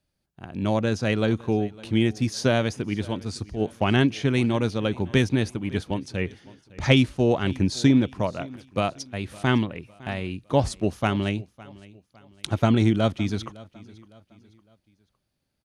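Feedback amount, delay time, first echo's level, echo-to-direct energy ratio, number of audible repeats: 39%, 558 ms, −21.5 dB, −21.0 dB, 2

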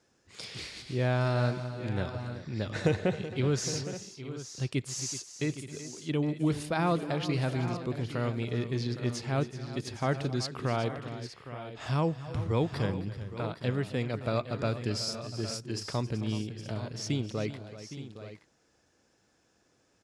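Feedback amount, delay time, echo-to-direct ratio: repeats not evenly spaced, 265 ms, −8.0 dB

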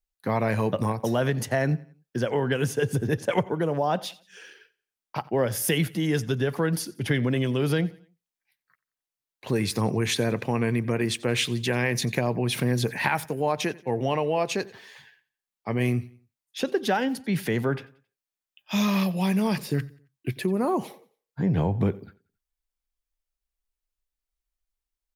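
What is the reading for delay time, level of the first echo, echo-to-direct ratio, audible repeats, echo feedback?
90 ms, −22.0 dB, −21.5 dB, 2, 39%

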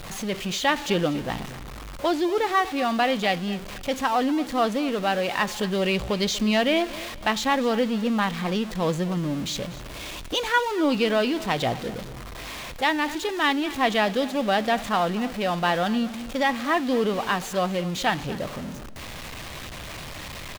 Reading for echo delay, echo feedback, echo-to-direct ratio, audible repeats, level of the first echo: 240 ms, 31%, −17.0 dB, 2, −17.5 dB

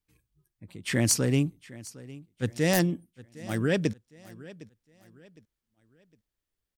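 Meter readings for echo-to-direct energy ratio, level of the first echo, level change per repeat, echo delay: −19.0 dB, −19.5 dB, −9.0 dB, 759 ms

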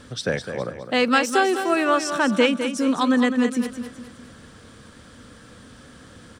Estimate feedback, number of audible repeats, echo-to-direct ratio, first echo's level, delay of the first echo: 42%, 4, −8.0 dB, −9.0 dB, 207 ms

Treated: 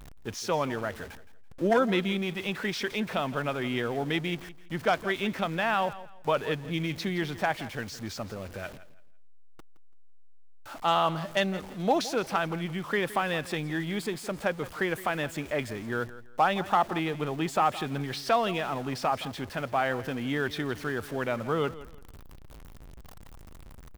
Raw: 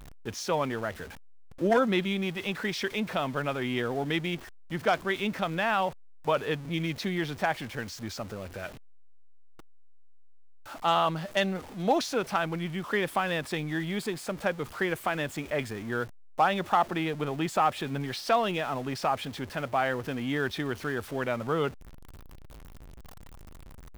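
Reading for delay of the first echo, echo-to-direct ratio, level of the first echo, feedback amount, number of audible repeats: 167 ms, −16.0 dB, −16.5 dB, 26%, 2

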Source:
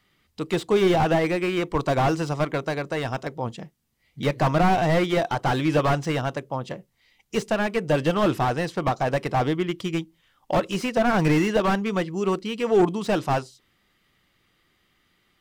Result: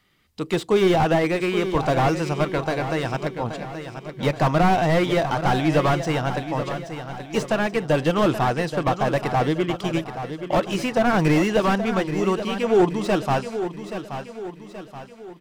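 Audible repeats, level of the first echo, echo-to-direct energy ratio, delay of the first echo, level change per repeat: 4, −10.0 dB, −9.0 dB, 827 ms, −6.5 dB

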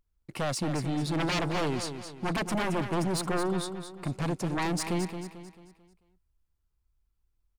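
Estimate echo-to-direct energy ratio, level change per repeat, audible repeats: −8.0 dB, −7.5 dB, 4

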